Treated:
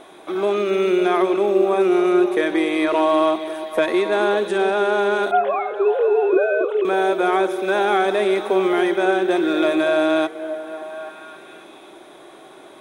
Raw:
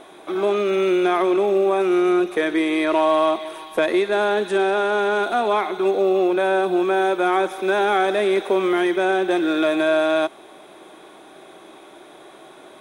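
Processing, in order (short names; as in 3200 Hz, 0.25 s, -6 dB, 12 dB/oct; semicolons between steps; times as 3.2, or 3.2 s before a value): 5.31–6.85 sine-wave speech; delay with a stepping band-pass 0.276 s, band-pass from 290 Hz, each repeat 0.7 oct, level -5.5 dB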